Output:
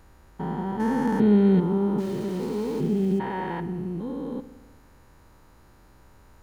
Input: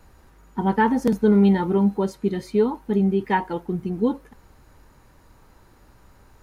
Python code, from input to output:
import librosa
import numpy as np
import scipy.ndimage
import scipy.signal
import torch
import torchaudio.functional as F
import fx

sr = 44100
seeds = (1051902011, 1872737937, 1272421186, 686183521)

y = fx.spec_steps(x, sr, hold_ms=400)
y = fx.sample_gate(y, sr, floor_db=-39.5, at=(1.98, 3.19))
y = fx.rev_spring(y, sr, rt60_s=1.2, pass_ms=(48,), chirp_ms=50, drr_db=13.0)